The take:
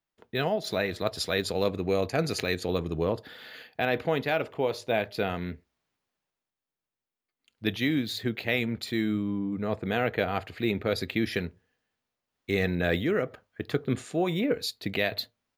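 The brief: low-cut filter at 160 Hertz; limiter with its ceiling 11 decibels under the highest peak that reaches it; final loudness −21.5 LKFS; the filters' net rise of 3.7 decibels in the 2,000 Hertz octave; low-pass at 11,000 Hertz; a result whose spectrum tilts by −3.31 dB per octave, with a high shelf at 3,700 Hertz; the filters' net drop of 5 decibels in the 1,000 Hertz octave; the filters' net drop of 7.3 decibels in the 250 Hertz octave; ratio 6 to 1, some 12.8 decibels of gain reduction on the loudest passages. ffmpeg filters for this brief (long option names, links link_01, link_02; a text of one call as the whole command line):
ffmpeg -i in.wav -af "highpass=160,lowpass=11000,equalizer=frequency=250:width_type=o:gain=-8.5,equalizer=frequency=1000:width_type=o:gain=-9,equalizer=frequency=2000:width_type=o:gain=4.5,highshelf=frequency=3700:gain=8.5,acompressor=threshold=-34dB:ratio=6,volume=19dB,alimiter=limit=-10dB:level=0:latency=1" out.wav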